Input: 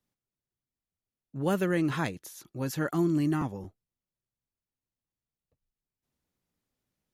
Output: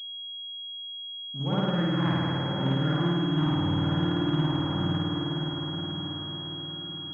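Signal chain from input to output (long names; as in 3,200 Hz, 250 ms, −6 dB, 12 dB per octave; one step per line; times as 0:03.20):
feedback delay with all-pass diffusion 1,000 ms, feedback 40%, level −9.5 dB
in parallel at +3 dB: downward compressor, threshold −41 dBFS, peak gain reduction 17.5 dB
on the sum: parametric band 420 Hz −9 dB 1.5 octaves
spring reverb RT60 2.3 s, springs 52 ms, chirp 65 ms, DRR −9.5 dB
speech leveller within 5 dB 0.5 s
switching amplifier with a slow clock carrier 3,300 Hz
level −3 dB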